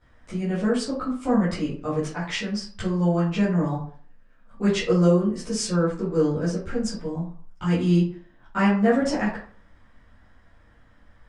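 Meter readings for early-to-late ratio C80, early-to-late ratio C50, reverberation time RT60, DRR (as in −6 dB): 10.0 dB, 5.0 dB, 0.45 s, −13.0 dB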